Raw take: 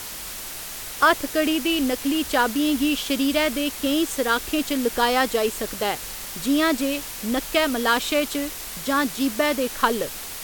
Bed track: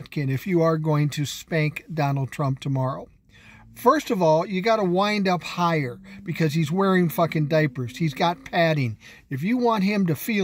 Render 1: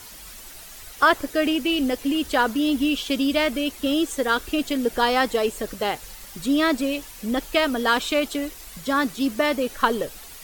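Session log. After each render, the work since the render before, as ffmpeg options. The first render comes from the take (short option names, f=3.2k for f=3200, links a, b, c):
-af "afftdn=nr=10:nf=-35"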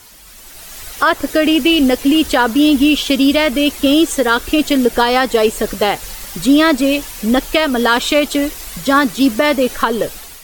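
-af "alimiter=limit=-14dB:level=0:latency=1:release=210,dynaudnorm=f=260:g=5:m=13dB"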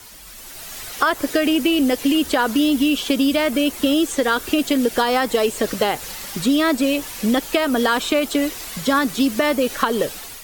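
-filter_complex "[0:a]acrossover=split=97|2000|6600[a][b][c][d];[a]acompressor=threshold=-46dB:ratio=4[e];[b]acompressor=threshold=-16dB:ratio=4[f];[c]acompressor=threshold=-28dB:ratio=4[g];[d]acompressor=threshold=-33dB:ratio=4[h];[e][f][g][h]amix=inputs=4:normalize=0"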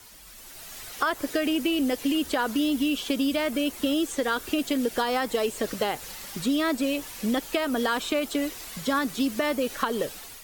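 -af "volume=-7.5dB"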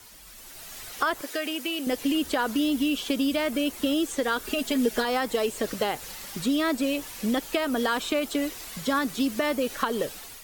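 -filter_complex "[0:a]asettb=1/sr,asplit=3[a][b][c];[a]atrim=end=1.214[d];[b]atrim=start=1.21:end=1.87,asetpts=PTS-STARTPTS,afade=t=in:d=0.004:c=qsin,afade=t=out:st=0.656:d=0.004:c=qsin,highpass=f=730:p=1[e];[c]atrim=start=1.866[f];[d][e]acrossfade=d=0.004:c1=hsin:c2=qsin[g];[g][f]acrossfade=d=0.004:c1=qsin:c2=hsin,asettb=1/sr,asplit=3[h][i][j];[h]atrim=end=4.444[k];[i]atrim=start=4.44:end=5.05,asetpts=PTS-STARTPTS,afade=t=in:d=0.004:c=qsin,afade=t=out:st=0.606:d=0.004:c=qsin,aecho=1:1:4.7:0.67,atrim=end_sample=26901[l];[j]atrim=start=5.046[m];[k][l]acrossfade=d=0.004:c1=hsin:c2=qsin[n];[n][m]acrossfade=d=0.004:c1=qsin:c2=hsin"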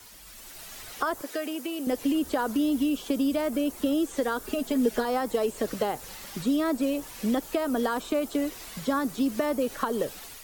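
-filter_complex "[0:a]acrossover=split=210|1400|5200[a][b][c][d];[c]acompressor=threshold=-45dB:ratio=6[e];[d]alimiter=level_in=12.5dB:limit=-24dB:level=0:latency=1:release=25,volume=-12.5dB[f];[a][b][e][f]amix=inputs=4:normalize=0"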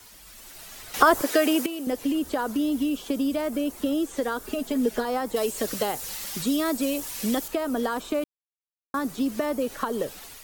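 -filter_complex "[0:a]asettb=1/sr,asplit=3[a][b][c];[a]atrim=end=5.364[d];[b]atrim=start=5.36:end=7.48,asetpts=PTS-STARTPTS,afade=t=in:d=0.004:c=qsin,afade=t=out:st=2.116:d=0.004:c=qsin,highshelf=f=2.8k:g=10[e];[c]atrim=start=7.476[f];[d][e]acrossfade=d=0.004:c1=hsin:c2=qsin[g];[g][f]acrossfade=d=0.004:c1=qsin:c2=hsin,asplit=5[h][i][j][k][l];[h]atrim=end=0.942[m];[i]atrim=start=0.938:end=1.662,asetpts=PTS-STARTPTS,volume=11dB[n];[j]atrim=start=1.658:end=8.24,asetpts=PTS-STARTPTS,afade=t=out:st=6.578:d=0.004:c=hsin[o];[k]atrim=start=8.24:end=8.94,asetpts=PTS-STARTPTS,volume=0[p];[l]atrim=start=8.94,asetpts=PTS-STARTPTS,afade=t=in:d=0.004:c=hsin[q];[m][n]acrossfade=d=0.004:c1=hsin:c2=hsin[r];[o][p][q]concat=n=3:v=0:a=1[s];[r][s]acrossfade=d=0.004:c1=hsin:c2=hsin"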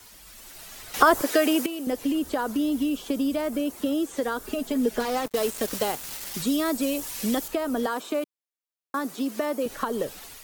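-filter_complex "[0:a]asettb=1/sr,asplit=3[a][b][c];[a]atrim=end=3.604[d];[b]atrim=start=3.6:end=4.26,asetpts=PTS-STARTPTS,afade=t=in:d=0.004:c=qsin,afade=t=out:st=0.656:d=0.004:c=qsin,highpass=f=81:p=1[e];[c]atrim=start=4.256[f];[d][e]acrossfade=d=0.004:c1=hsin:c2=qsin[g];[g][f]acrossfade=d=0.004:c1=qsin:c2=hsin,asettb=1/sr,asplit=3[h][i][j];[h]atrim=end=5.004[k];[i]atrim=start=5:end=6.34,asetpts=PTS-STARTPTS,afade=t=in:d=0.004:c=qsin,afade=t=out:st=1.336:d=0.004:c=qsin,acrusher=bits=4:mix=0:aa=0.5[l];[j]atrim=start=6.336[m];[k][l]acrossfade=d=0.004:c1=hsin:c2=qsin[n];[n][m]acrossfade=d=0.004:c1=qsin:c2=hsin,asettb=1/sr,asplit=3[o][p][q];[o]atrim=end=7.864[r];[p]atrim=start=7.86:end=9.66,asetpts=PTS-STARTPTS,afade=t=in:d=0.004:c=qsin,afade=t=out:st=1.796:d=0.004:c=qsin,highpass=250[s];[q]atrim=start=9.656[t];[r][s]acrossfade=d=0.004:c1=hsin:c2=qsin[u];[u][t]acrossfade=d=0.004:c1=qsin:c2=hsin"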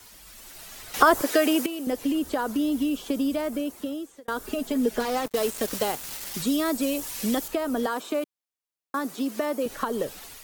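-filter_complex "[0:a]asplit=2[a][b];[a]atrim=end=4.28,asetpts=PTS-STARTPTS,afade=t=out:st=3.14:d=1.14:c=qsin[c];[b]atrim=start=4.28,asetpts=PTS-STARTPTS,afade=t=in:d=0.004:c=hsin[d];[c][d]concat=n=2:v=0:a=1"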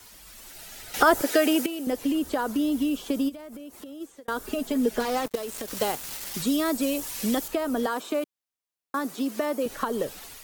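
-filter_complex "[0:a]asettb=1/sr,asplit=3[a][b][c];[a]atrim=end=0.514[d];[b]atrim=start=0.51:end=1.84,asetpts=PTS-STARTPTS,afade=t=in:d=0.004:c=qsin,afade=t=out:st=1.326:d=0.004:c=qsin,asuperstop=centerf=1100:order=4:qfactor=6.2[e];[c]atrim=start=1.836[f];[d][e]acrossfade=d=0.004:c1=hsin:c2=qsin[g];[g][f]acrossfade=d=0.004:c1=qsin:c2=hsin,asplit=3[h][i][j];[h]afade=t=out:st=3.28:d=0.02[k];[i]acompressor=threshold=-37dB:ratio=16:attack=3.2:release=140:knee=1:detection=peak,afade=t=in:st=3.28:d=0.02,afade=t=out:st=4:d=0.02[l];[j]afade=t=in:st=4:d=0.02[m];[k][l][m]amix=inputs=3:normalize=0,asettb=1/sr,asplit=3[n][o][p];[n]atrim=end=5.354[q];[o]atrim=start=5.35:end=5.77,asetpts=PTS-STARTPTS,afade=t=in:d=0.004:c=qsin,afade=t=out:st=0.416:d=0.004:c=qsin,acompressor=threshold=-29dB:ratio=12:attack=3.2:release=140:knee=1:detection=peak[r];[p]atrim=start=5.766[s];[q][r]acrossfade=d=0.004:c1=hsin:c2=qsin[t];[t][s]acrossfade=d=0.004:c1=qsin:c2=hsin"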